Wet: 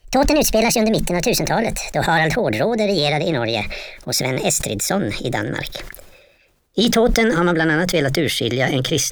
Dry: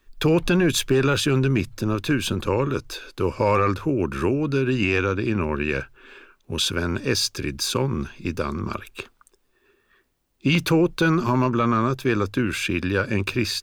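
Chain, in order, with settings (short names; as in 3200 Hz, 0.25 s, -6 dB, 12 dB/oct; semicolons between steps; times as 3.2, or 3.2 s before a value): speed glide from 168% -> 131%; sustainer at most 47 dB/s; gain +3.5 dB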